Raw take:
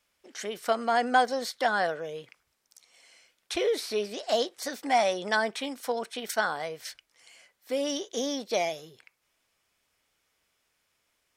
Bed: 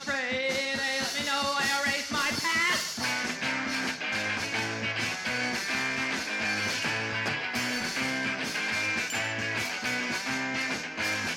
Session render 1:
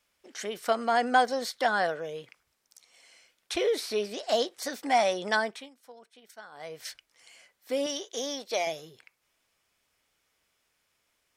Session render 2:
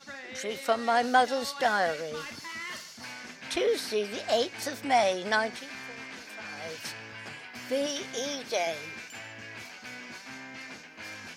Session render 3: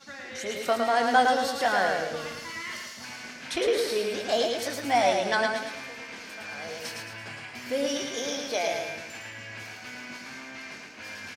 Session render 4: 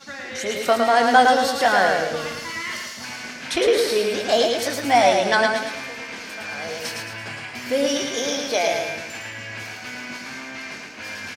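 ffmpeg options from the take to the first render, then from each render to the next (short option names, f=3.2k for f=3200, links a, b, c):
-filter_complex "[0:a]asettb=1/sr,asplit=3[a][b][c];[a]atrim=end=7.864[d];[b]atrim=start=7.86:end=8.67,asetpts=PTS-STARTPTS,afade=t=in:d=0.004:c=qsin,afade=t=out:st=0.806:d=0.004:c=qsin,equalizer=f=140:t=o:w=2.1:g=-13.5[e];[c]atrim=start=8.666[f];[d][e]acrossfade=d=0.004:c1=hsin:c2=qsin[g];[g][f]acrossfade=d=0.004:c1=qsin:c2=hsin,asplit=3[h][i][j];[h]atrim=end=5.7,asetpts=PTS-STARTPTS,afade=t=out:st=5.36:d=0.34:silence=0.1[k];[i]atrim=start=5.7:end=6.51,asetpts=PTS-STARTPTS,volume=-20dB[l];[j]atrim=start=6.51,asetpts=PTS-STARTPTS,afade=t=in:d=0.34:silence=0.1[m];[k][l][m]concat=n=3:v=0:a=1"
-filter_complex "[1:a]volume=-12.5dB[a];[0:a][a]amix=inputs=2:normalize=0"
-filter_complex "[0:a]asplit=2[a][b];[b]adelay=21,volume=-11.5dB[c];[a][c]amix=inputs=2:normalize=0,asplit=2[d][e];[e]aecho=0:1:110|220|330|440|550|660:0.668|0.301|0.135|0.0609|0.0274|0.0123[f];[d][f]amix=inputs=2:normalize=0"
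-af "volume=7dB,alimiter=limit=-3dB:level=0:latency=1"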